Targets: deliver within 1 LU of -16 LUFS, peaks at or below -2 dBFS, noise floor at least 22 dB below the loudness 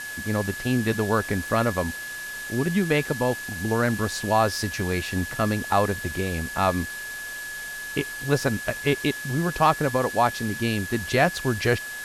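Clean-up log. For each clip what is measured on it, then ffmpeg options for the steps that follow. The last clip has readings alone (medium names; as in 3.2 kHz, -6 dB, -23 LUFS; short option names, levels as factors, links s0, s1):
steady tone 1.7 kHz; tone level -33 dBFS; noise floor -35 dBFS; noise floor target -47 dBFS; loudness -25.0 LUFS; peak level -6.5 dBFS; loudness target -16.0 LUFS
-> -af "bandreject=f=1700:w=30"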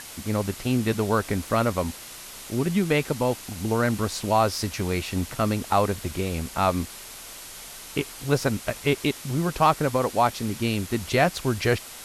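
steady tone not found; noise floor -41 dBFS; noise floor target -48 dBFS
-> -af "afftdn=nr=7:nf=-41"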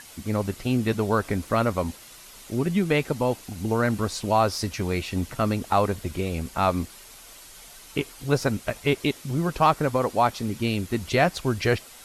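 noise floor -47 dBFS; noise floor target -48 dBFS
-> -af "afftdn=nr=6:nf=-47"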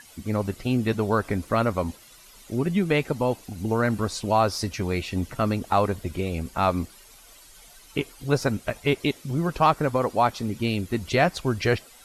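noise floor -51 dBFS; loudness -25.5 LUFS; peak level -7.0 dBFS; loudness target -16.0 LUFS
-> -af "volume=2.99,alimiter=limit=0.794:level=0:latency=1"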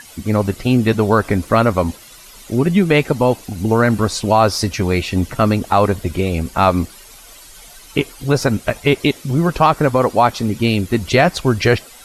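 loudness -16.5 LUFS; peak level -2.0 dBFS; noise floor -41 dBFS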